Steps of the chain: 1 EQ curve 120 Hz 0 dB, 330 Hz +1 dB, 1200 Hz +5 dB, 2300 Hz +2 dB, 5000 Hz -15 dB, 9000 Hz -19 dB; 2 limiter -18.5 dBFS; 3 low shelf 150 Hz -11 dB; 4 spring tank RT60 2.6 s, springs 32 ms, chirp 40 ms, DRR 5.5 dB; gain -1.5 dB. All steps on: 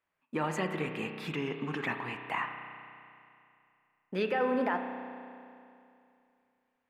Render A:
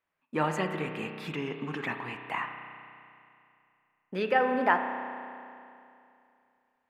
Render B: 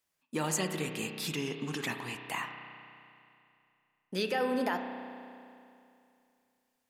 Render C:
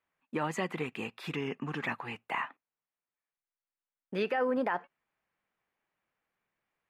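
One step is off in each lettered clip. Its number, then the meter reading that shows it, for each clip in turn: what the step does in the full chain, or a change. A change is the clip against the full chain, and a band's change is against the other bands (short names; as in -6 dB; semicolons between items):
2, crest factor change +6.0 dB; 1, 4 kHz band +7.5 dB; 4, momentary loudness spread change -9 LU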